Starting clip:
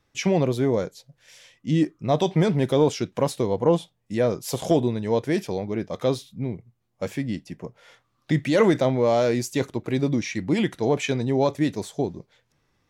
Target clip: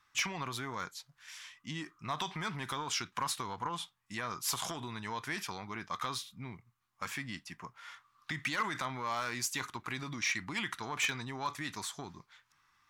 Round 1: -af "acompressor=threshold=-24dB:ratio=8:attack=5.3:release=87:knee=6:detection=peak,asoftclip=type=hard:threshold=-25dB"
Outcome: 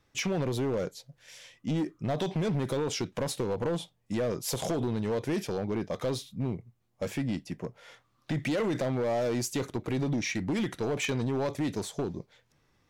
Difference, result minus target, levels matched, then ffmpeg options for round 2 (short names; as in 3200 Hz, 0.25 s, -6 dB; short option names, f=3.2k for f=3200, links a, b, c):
1000 Hz band -7.5 dB
-af "acompressor=threshold=-24dB:ratio=8:attack=5.3:release=87:knee=6:detection=peak,lowshelf=f=780:t=q:w=3:g=-13,asoftclip=type=hard:threshold=-25dB"